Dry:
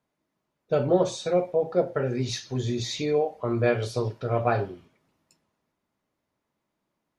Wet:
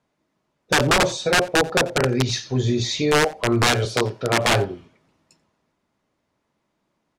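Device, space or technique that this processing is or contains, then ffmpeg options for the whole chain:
overflowing digital effects unit: -filter_complex "[0:a]aeval=exprs='(mod(7.5*val(0)+1,2)-1)/7.5':channel_layout=same,lowpass=8600,asettb=1/sr,asplit=3[link_01][link_02][link_03];[link_01]atrim=end=3.854[link_04];[link_02]atrim=start=3.85:end=4.47,asetpts=PTS-STARTPTS,afade=type=in:duration=0.004:curve=qsin,afade=type=out:start_time=0.616:duration=0.004:curve=qsin,highpass=140[link_05];[link_03]atrim=start=4.466[link_06];[link_04][link_05]acrossfade=duration=0.004:curve1=hsin:curve2=qsin[link_07];[link_07][link_06]acrossfade=duration=0.004:curve1=qsin:curve2=hsin,aecho=1:1:88:0.0668,volume=7dB"

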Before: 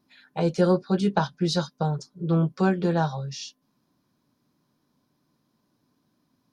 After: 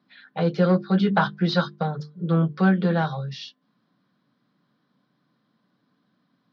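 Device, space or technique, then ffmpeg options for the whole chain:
overdrive pedal into a guitar cabinet: -filter_complex "[0:a]highpass=98,bandreject=frequency=50:width_type=h:width=6,bandreject=frequency=100:width_type=h:width=6,bandreject=frequency=150:width_type=h:width=6,bandreject=frequency=200:width_type=h:width=6,bandreject=frequency=250:width_type=h:width=6,bandreject=frequency=300:width_type=h:width=6,bandreject=frequency=350:width_type=h:width=6,bandreject=frequency=400:width_type=h:width=6,bandreject=frequency=450:width_type=h:width=6,asplit=2[link_01][link_02];[link_02]highpass=frequency=720:poles=1,volume=14dB,asoftclip=type=tanh:threshold=-8dB[link_03];[link_01][link_03]amix=inputs=2:normalize=0,lowpass=frequency=3000:poles=1,volume=-6dB,highpass=86,equalizer=frequency=130:width_type=q:width=4:gain=6,equalizer=frequency=190:width_type=q:width=4:gain=8,equalizer=frequency=370:width_type=q:width=4:gain=-5,equalizer=frequency=620:width_type=q:width=4:gain=-4,equalizer=frequency=920:width_type=q:width=4:gain=-9,equalizer=frequency=2500:width_type=q:width=4:gain=-7,lowpass=frequency=4100:width=0.5412,lowpass=frequency=4100:width=1.3066,asettb=1/sr,asplit=3[link_04][link_05][link_06];[link_04]atrim=end=0.974[link_07];[link_05]atrim=start=0.97:end=1.76,asetpts=PTS-STARTPTS,afade=type=in:duration=0.004:curve=qsin,afade=type=out:start_time=0.786:duration=0.004:curve=qsin,equalizer=frequency=1100:width_type=o:width=2:gain=5.5[link_08];[link_06]atrim=start=1.756[link_09];[link_07][link_08]acrossfade=duration=0.004:curve1=hsin:curve2=qsin[link_10];[link_10][link_09]acrossfade=duration=0.004:curve1=qsin:curve2=hsin"

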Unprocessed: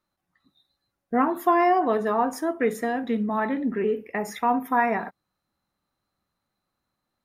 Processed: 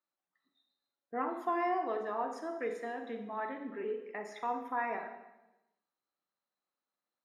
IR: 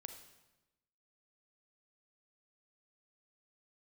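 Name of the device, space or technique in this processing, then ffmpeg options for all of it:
supermarket ceiling speaker: -filter_complex "[0:a]highpass=340,lowpass=5800[link_01];[1:a]atrim=start_sample=2205[link_02];[link_01][link_02]afir=irnorm=-1:irlink=0,volume=-6.5dB"

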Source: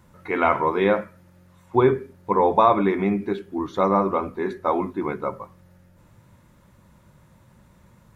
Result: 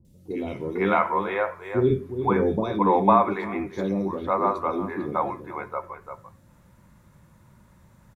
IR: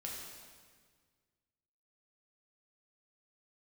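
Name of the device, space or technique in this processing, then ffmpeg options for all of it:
ducked delay: -filter_complex "[0:a]asettb=1/sr,asplit=3[link_01][link_02][link_03];[link_01]atrim=end=1.904[link_04];[link_02]atrim=start=1.9:end=2.64,asetpts=PTS-STARTPTS,afade=type=in:duration=0.004:curve=qsin,afade=type=out:start_time=0.736:duration=0.004:curve=qsin,lowshelf=frequency=370:gain=8[link_05];[link_03]atrim=start=2.636[link_06];[link_04][link_05]acrossfade=duration=0.004:curve1=hsin:curve2=qsin[link_07];[link_07][link_06]acrossfade=duration=0.004:curve1=qsin:curve2=hsin,asplit=3[link_08][link_09][link_10];[link_09]adelay=344,volume=-8dB[link_11];[link_10]apad=whole_len=374616[link_12];[link_11][link_12]sidechaincompress=threshold=-34dB:ratio=8:attack=16:release=168[link_13];[link_08][link_13]amix=inputs=2:normalize=0,acrossover=split=470|3200[link_14][link_15][link_16];[link_16]adelay=50[link_17];[link_15]adelay=500[link_18];[link_14][link_18][link_17]amix=inputs=3:normalize=0,volume=-1dB"

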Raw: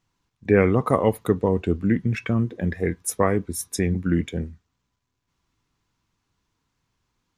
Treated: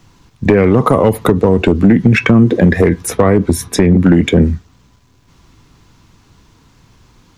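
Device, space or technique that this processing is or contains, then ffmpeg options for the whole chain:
mastering chain: -filter_complex "[0:a]equalizer=frequency=4500:width_type=o:width=1.6:gain=2.5,acrossover=split=160|3200[link_01][link_02][link_03];[link_01]acompressor=threshold=-36dB:ratio=4[link_04];[link_02]acompressor=threshold=-23dB:ratio=4[link_05];[link_03]acompressor=threshold=-47dB:ratio=4[link_06];[link_04][link_05][link_06]amix=inputs=3:normalize=0,acompressor=threshold=-29dB:ratio=2.5,asoftclip=type=tanh:threshold=-21dB,tiltshelf=frequency=760:gain=3.5,asoftclip=type=hard:threshold=-22.5dB,alimiter=level_in=26dB:limit=-1dB:release=50:level=0:latency=1,volume=-1dB"

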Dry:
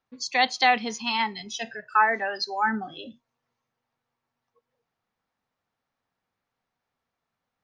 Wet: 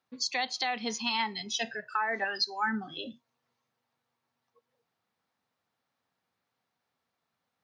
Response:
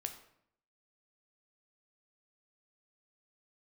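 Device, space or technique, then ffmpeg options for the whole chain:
broadcast voice chain: -filter_complex "[0:a]asettb=1/sr,asplit=3[link_01][link_02][link_03];[link_01]atrim=end=2.244[link_04];[link_02]atrim=start=2.24:end=2.97,asetpts=PTS-STARTPTS,afade=type=in:duration=0.004:curve=qsin,afade=type=out:start_time=0.726:duration=0.004:curve=qsin,equalizer=frequency=600:width_type=o:width=1:gain=-11[link_05];[link_03]atrim=start=2.966[link_06];[link_04][link_05]acrossfade=duration=0.004:curve1=hsin:curve2=qsin[link_07];[link_07][link_06]acrossfade=duration=0.004:curve1=qsin:curve2=hsin,highpass=97,deesser=0.5,acompressor=threshold=-22dB:ratio=4,equalizer=frequency=4100:width_type=o:width=0.77:gain=3.5,alimiter=limit=-18.5dB:level=0:latency=1:release=358"

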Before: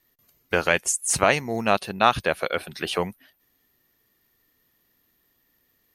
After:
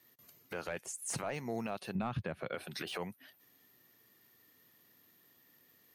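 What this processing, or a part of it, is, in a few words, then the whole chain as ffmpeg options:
podcast mastering chain: -filter_complex "[0:a]asettb=1/sr,asplit=3[link_01][link_02][link_03];[link_01]atrim=end=1.954[link_04];[link_02]atrim=start=1.95:end=2.55,asetpts=PTS-STARTPTS,afade=type=in:duration=0.004:curve=qsin,afade=type=out:start_time=0.596:duration=0.004:curve=qsin,bass=frequency=250:gain=15,treble=frequency=4000:gain=-14[link_05];[link_03]atrim=start=2.546[link_06];[link_04][link_05]acrossfade=duration=0.004:curve1=hsin:curve2=qsin[link_07];[link_07][link_06]acrossfade=duration=0.004:curve1=qsin:curve2=hsin,highpass=frequency=100:width=0.5412,highpass=frequency=100:width=1.3066,deesser=0.8,acompressor=threshold=-38dB:ratio=3,alimiter=level_in=4.5dB:limit=-24dB:level=0:latency=1:release=57,volume=-4.5dB,volume=2dB" -ar 48000 -c:a libmp3lame -b:a 112k

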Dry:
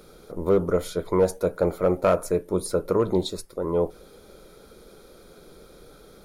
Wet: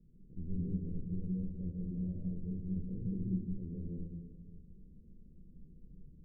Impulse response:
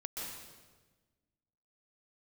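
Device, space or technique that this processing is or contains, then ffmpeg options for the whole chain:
club heard from the street: -filter_complex "[0:a]alimiter=limit=-20dB:level=0:latency=1:release=14,lowpass=frequency=210:width=0.5412,lowpass=frequency=210:width=1.3066[link_01];[1:a]atrim=start_sample=2205[link_02];[link_01][link_02]afir=irnorm=-1:irlink=0,volume=-2.5dB"

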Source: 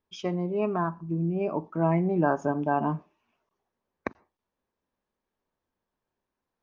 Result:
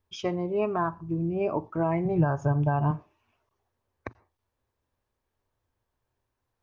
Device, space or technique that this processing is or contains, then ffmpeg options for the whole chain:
car stereo with a boomy subwoofer: -filter_complex "[0:a]lowshelf=frequency=140:width_type=q:width=3:gain=6.5,alimiter=limit=-18.5dB:level=0:latency=1:release=288,asettb=1/sr,asplit=3[link_01][link_02][link_03];[link_01]atrim=end=2.054[link_04];[link_02]atrim=start=2.05:end=2.91,asetpts=PTS-STARTPTS,afade=type=in:duration=0.004:curve=qsin,afade=type=out:start_time=0.856:duration=0.004:curve=qsin,lowshelf=frequency=180:width_type=q:width=3:gain=6.5[link_05];[link_03]atrim=start=2.906[link_06];[link_04][link_05]acrossfade=duration=0.004:curve1=hsin:curve2=qsin[link_07];[link_07][link_06]acrossfade=duration=0.004:curve1=qsin:curve2=hsin,volume=2.5dB"

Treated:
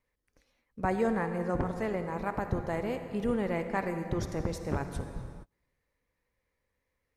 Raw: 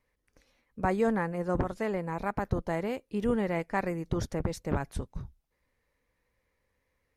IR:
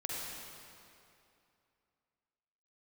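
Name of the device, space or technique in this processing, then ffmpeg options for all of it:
keyed gated reverb: -filter_complex "[0:a]asplit=3[link_01][link_02][link_03];[1:a]atrim=start_sample=2205[link_04];[link_02][link_04]afir=irnorm=-1:irlink=0[link_05];[link_03]apad=whole_len=315971[link_06];[link_05][link_06]sidechaingate=range=-33dB:threshold=-59dB:ratio=16:detection=peak,volume=-6dB[link_07];[link_01][link_07]amix=inputs=2:normalize=0,volume=-4.5dB"

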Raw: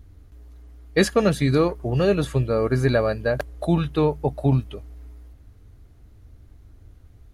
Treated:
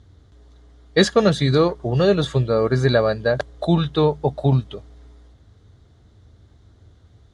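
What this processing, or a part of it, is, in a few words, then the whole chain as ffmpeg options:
car door speaker: -af "highpass=91,equalizer=frequency=280:width_type=q:width=4:gain=-5,equalizer=frequency=2500:width_type=q:width=4:gain=-8,equalizer=frequency=3600:width_type=q:width=4:gain=8,lowpass=frequency=7800:width=0.5412,lowpass=frequency=7800:width=1.3066,volume=3.5dB"

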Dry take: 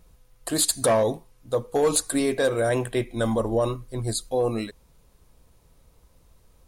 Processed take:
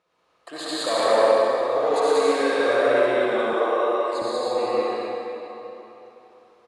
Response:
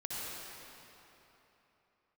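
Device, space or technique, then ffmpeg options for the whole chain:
station announcement: -filter_complex "[0:a]highpass=490,lowpass=3500,equalizer=frequency=1200:width_type=o:width=0.21:gain=5.5,aecho=1:1:119.5|186.6:0.794|1[link_01];[1:a]atrim=start_sample=2205[link_02];[link_01][link_02]afir=irnorm=-1:irlink=0,asettb=1/sr,asplit=3[link_03][link_04][link_05];[link_03]atrim=end=3.534[link_06];[link_04]atrim=start=3.53:end=4.22,asetpts=PTS-STARTPTS,afade=type=in:duration=0.004:curve=qsin,afade=type=out:start_time=0.686:duration=0.004:curve=qsin,highpass=frequency=280:width=0.5412,highpass=frequency=280:width=1.3066[link_07];[link_05]atrim=start=4.216[link_08];[link_06][link_07]acrossfade=duration=0.004:curve1=hsin:curve2=qsin[link_09];[link_09][link_08]acrossfade=duration=0.004:curve1=qsin:curve2=hsin"

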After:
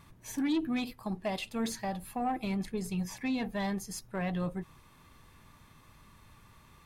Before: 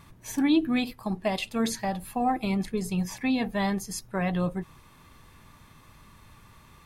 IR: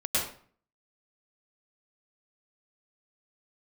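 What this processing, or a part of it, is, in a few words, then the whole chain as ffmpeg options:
saturation between pre-emphasis and de-emphasis: -af "highshelf=frequency=2400:gain=9,asoftclip=type=tanh:threshold=-19.5dB,highshelf=frequency=2400:gain=-9,volume=-4.5dB"

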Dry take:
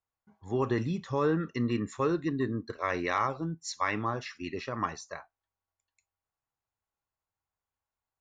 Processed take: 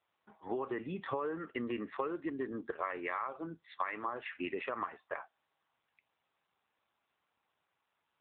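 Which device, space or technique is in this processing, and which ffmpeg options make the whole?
voicemail: -filter_complex "[0:a]asettb=1/sr,asplit=3[link_01][link_02][link_03];[link_01]atrim=end=2.984[link_04];[link_02]atrim=start=2.98:end=4.07,asetpts=PTS-STARTPTS,afade=type=in:duration=0.004:curve=qsin,afade=type=out:start_time=1.086:duration=0.004:curve=qsin,lowshelf=frequency=260:gain=-4.5[link_05];[link_03]atrim=start=4.066[link_06];[link_04][link_05]acrossfade=duration=0.004:curve1=hsin:curve2=qsin[link_07];[link_07][link_06]acrossfade=duration=0.004:curve1=qsin:curve2=hsin,highpass=390,lowpass=3000,acompressor=threshold=-43dB:ratio=10,volume=10dB" -ar 8000 -c:a libopencore_amrnb -b:a 7400

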